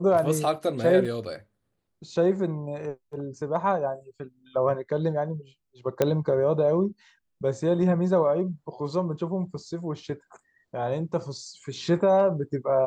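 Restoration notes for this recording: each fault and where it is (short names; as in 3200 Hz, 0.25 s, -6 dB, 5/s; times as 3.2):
1.05 gap 2.7 ms
6.02 pop -9 dBFS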